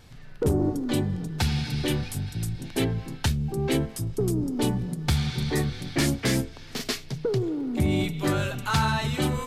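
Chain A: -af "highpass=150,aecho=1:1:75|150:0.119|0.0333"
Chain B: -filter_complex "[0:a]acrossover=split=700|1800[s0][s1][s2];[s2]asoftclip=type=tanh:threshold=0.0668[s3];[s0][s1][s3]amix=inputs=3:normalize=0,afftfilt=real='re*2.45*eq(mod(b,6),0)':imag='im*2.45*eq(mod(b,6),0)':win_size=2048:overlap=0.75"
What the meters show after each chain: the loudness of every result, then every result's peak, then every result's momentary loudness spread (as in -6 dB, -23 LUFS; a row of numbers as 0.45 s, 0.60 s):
-28.5 LUFS, -29.5 LUFS; -12.0 dBFS, -11.0 dBFS; 6 LU, 8 LU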